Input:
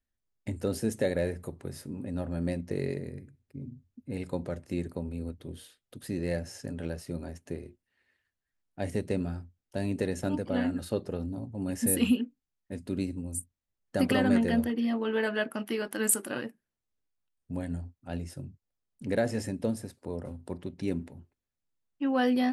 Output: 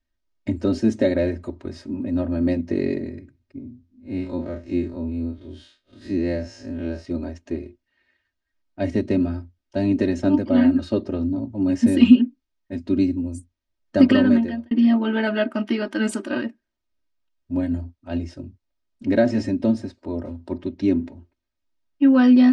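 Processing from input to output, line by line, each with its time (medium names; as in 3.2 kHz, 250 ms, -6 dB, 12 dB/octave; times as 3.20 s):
3.58–7.05 s: spectral blur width 85 ms
14.03–14.71 s: fade out
whole clip: low-pass 5.8 kHz 24 dB/octave; dynamic bell 210 Hz, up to +7 dB, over -41 dBFS, Q 0.71; comb 3.2 ms, depth 90%; trim +3.5 dB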